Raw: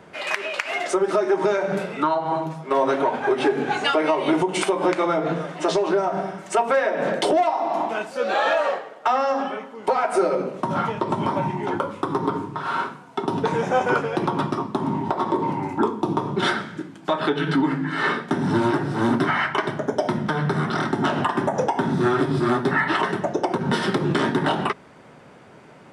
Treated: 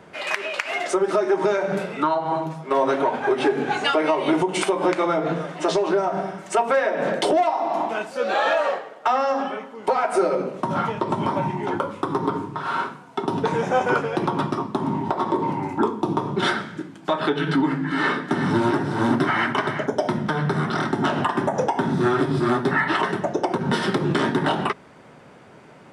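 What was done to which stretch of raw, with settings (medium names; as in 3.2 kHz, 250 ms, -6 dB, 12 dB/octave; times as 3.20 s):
17.54–19.88 s: delay 368 ms -9 dB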